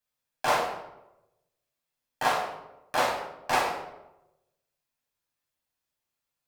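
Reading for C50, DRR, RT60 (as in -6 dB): 4.0 dB, -3.5 dB, 0.95 s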